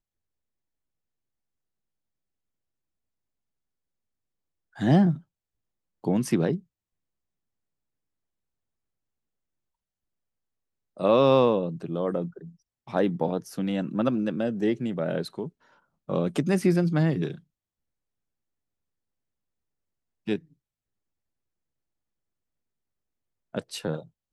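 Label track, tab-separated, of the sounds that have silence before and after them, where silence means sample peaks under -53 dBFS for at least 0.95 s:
4.750000	6.620000	sound
10.970000	17.400000	sound
20.270000	20.530000	sound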